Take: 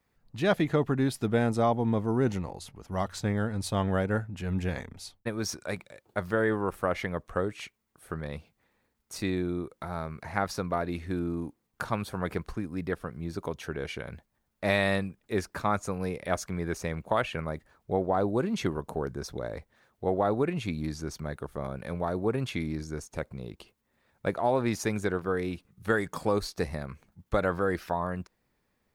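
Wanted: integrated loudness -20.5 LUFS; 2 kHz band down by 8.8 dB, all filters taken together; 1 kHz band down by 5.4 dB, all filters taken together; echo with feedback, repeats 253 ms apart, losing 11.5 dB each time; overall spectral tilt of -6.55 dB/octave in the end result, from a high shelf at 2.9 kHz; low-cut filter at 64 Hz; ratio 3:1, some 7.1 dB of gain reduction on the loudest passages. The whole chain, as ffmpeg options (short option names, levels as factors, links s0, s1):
-af "highpass=64,equalizer=f=1000:t=o:g=-5,equalizer=f=2000:t=o:g=-8,highshelf=f=2900:g=-5,acompressor=threshold=0.0251:ratio=3,aecho=1:1:253|506|759:0.266|0.0718|0.0194,volume=7.08"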